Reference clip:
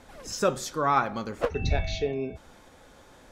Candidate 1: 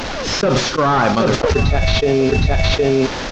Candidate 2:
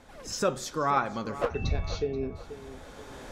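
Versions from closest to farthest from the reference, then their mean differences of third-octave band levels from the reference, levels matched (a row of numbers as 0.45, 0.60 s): 2, 1; 4.0, 10.0 dB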